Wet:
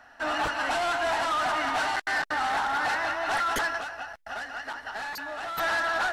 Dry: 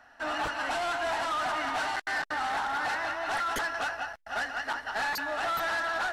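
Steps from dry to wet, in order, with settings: 3.77–5.58 compressor, threshold -37 dBFS, peak gain reduction 8.5 dB; gain +3.5 dB

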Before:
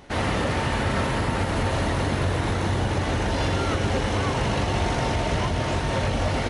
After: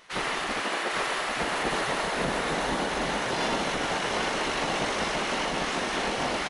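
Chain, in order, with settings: spectral gate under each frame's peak -10 dB weak; 0.6–1.35 HPF 150 Hz -> 600 Hz 24 dB/oct; echo 0.801 s -4.5 dB

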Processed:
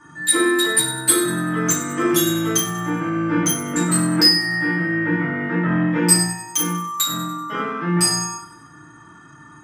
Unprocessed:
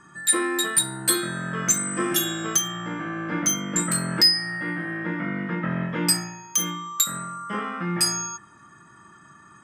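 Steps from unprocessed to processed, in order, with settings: thin delay 96 ms, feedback 47%, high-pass 2200 Hz, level -12.5 dB; FDN reverb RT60 0.51 s, low-frequency decay 1.45×, high-frequency decay 0.65×, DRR -7.5 dB; gain -3 dB

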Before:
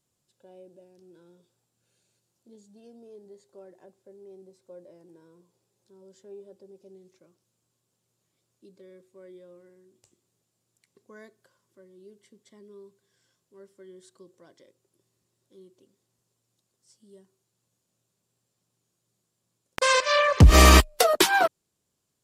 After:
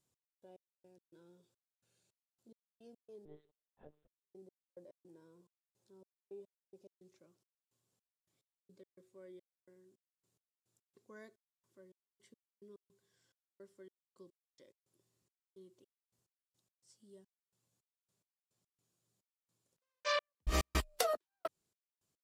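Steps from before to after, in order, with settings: compressor 3:1, threshold -25 dBFS, peak gain reduction 12.5 dB; step gate "x..x..x.xxx..x" 107 bpm -60 dB; 3.25–4.21 monotone LPC vocoder at 8 kHz 150 Hz; gain -6.5 dB

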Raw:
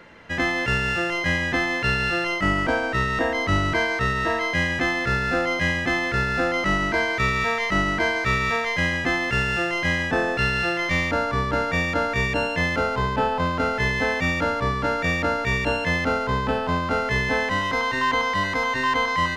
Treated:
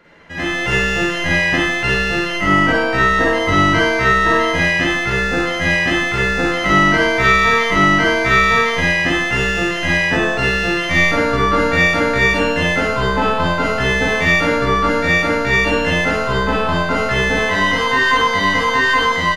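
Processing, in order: speakerphone echo 0.1 s, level -12 dB; AGC gain up to 11.5 dB; Schroeder reverb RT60 0.39 s, DRR -4.5 dB; gain -5.5 dB

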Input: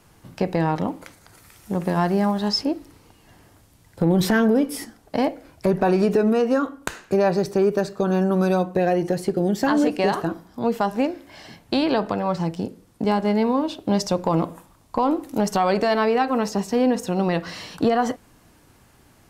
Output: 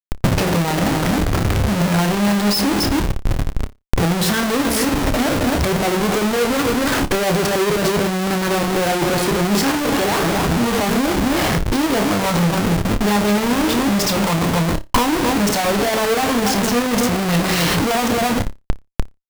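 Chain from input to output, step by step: added harmonics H 5 -16 dB, 6 -23 dB, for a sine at -8 dBFS; in parallel at -2 dB: compressor 6:1, threshold -29 dBFS, peak gain reduction 14 dB; on the sum: outdoor echo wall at 46 m, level -11 dB; Schmitt trigger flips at -33.5 dBFS; on a send: flutter echo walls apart 5 m, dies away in 0.2 s; on the sum: transient shaper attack +7 dB, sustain -2 dB

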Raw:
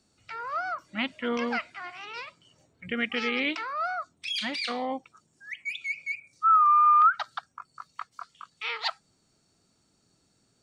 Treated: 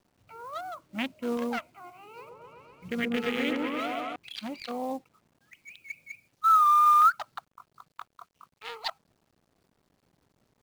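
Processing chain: Wiener smoothing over 25 samples; companded quantiser 6-bit; 2.06–4.16 repeats that get brighter 0.126 s, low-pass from 750 Hz, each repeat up 1 oct, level 0 dB

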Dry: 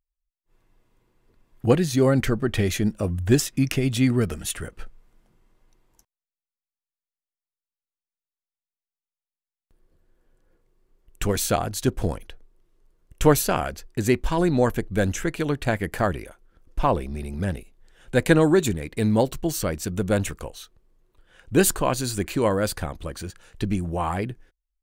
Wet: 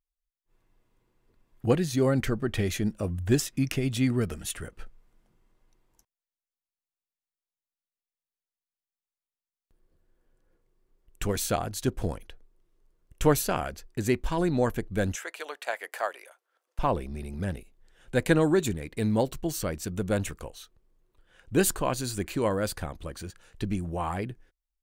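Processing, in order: 15.15–16.79 HPF 560 Hz 24 dB/oct; gain -5 dB

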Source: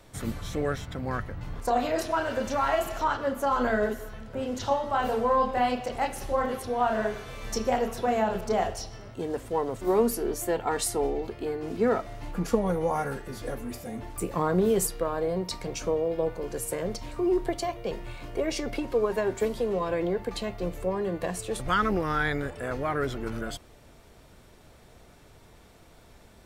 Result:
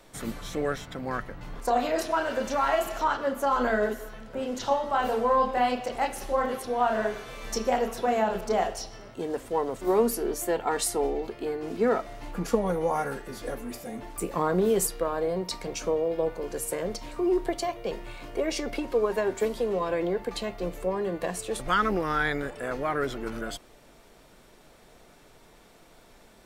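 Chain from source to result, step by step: bell 80 Hz -15 dB 1.2 oct; gain +1 dB

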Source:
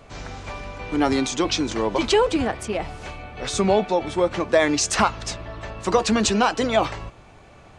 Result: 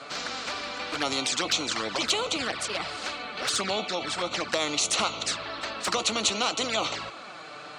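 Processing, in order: speaker cabinet 370–8600 Hz, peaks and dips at 390 Hz -7 dB, 920 Hz -7 dB, 1300 Hz +10 dB, 1900 Hz -3 dB, 4200 Hz +9 dB, 6200 Hz -4 dB; envelope flanger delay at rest 7.9 ms, full sweep at -20.5 dBFS; spectral compressor 2:1

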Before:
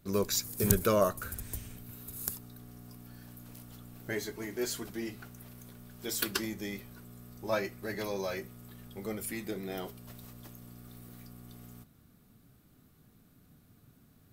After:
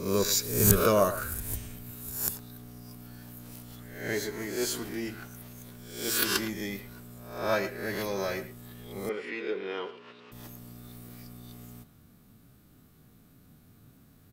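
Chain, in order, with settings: spectral swells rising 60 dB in 0.61 s; 9.09–10.32 speaker cabinet 360–4100 Hz, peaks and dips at 440 Hz +9 dB, 680 Hz -10 dB, 1000 Hz +5 dB, 1500 Hz +4 dB, 2700 Hz +7 dB, 4000 Hz -4 dB; speakerphone echo 0.11 s, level -13 dB; gain +2 dB

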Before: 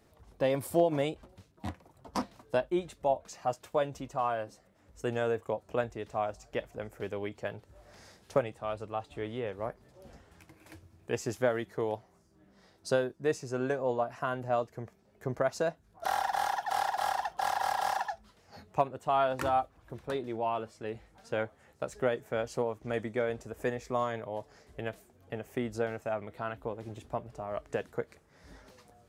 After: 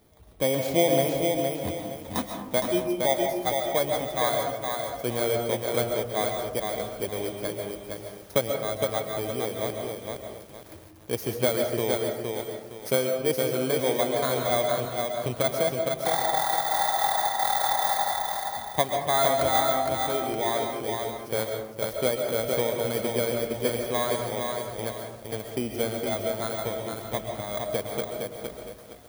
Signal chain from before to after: FFT order left unsorted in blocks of 16 samples; digital reverb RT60 0.85 s, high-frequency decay 0.35×, pre-delay 95 ms, DRR 4 dB; lo-fi delay 0.463 s, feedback 35%, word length 9-bit, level -4 dB; gain +3.5 dB

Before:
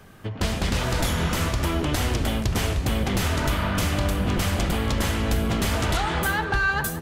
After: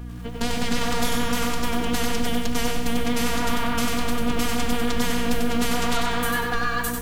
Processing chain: robotiser 237 Hz; hum 60 Hz, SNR 10 dB; vibrato 6.8 Hz 42 cents; lo-fi delay 94 ms, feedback 35%, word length 8-bit, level -4 dB; gain +2 dB

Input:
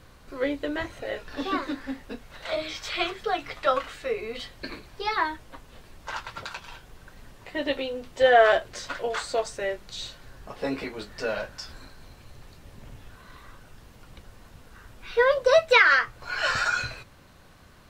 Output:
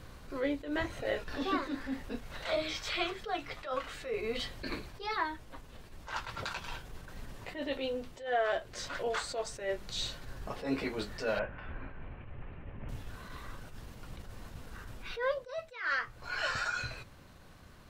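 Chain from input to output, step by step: compressor 1.5:1, threshold -33 dBFS, peak gain reduction 7.5 dB; low shelf 370 Hz +3 dB; vocal rider within 4 dB 0.5 s; 11.39–12.89 steep low-pass 2800 Hz 48 dB/oct; attack slew limiter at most 130 dB/s; gain -3 dB

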